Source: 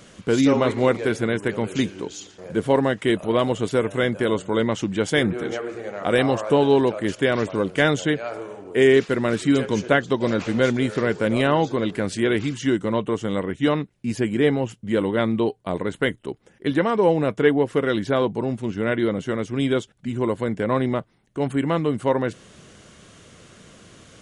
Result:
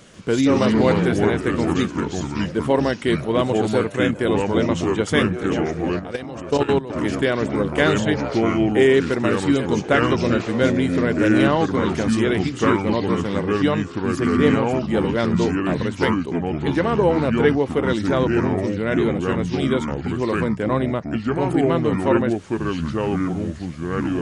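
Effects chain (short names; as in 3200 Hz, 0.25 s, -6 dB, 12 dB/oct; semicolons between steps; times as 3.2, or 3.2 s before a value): echoes that change speed 0.14 s, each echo -4 st, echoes 2; 5.99–6.9 level quantiser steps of 16 dB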